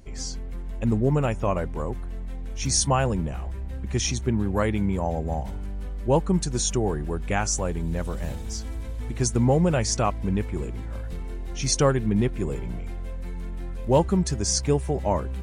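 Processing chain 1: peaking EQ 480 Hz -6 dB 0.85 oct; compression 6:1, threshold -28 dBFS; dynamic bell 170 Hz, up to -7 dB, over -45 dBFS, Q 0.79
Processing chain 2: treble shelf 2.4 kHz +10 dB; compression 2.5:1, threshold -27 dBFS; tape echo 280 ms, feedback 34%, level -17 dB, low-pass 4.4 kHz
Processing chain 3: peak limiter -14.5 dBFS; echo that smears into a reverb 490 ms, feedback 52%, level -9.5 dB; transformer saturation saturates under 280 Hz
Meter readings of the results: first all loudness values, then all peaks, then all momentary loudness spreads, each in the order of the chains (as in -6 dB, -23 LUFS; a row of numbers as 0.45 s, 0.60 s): -35.5 LUFS, -29.5 LUFS, -28.5 LUFS; -18.5 dBFS, -12.0 dBFS, -12.0 dBFS; 6 LU, 10 LU, 10 LU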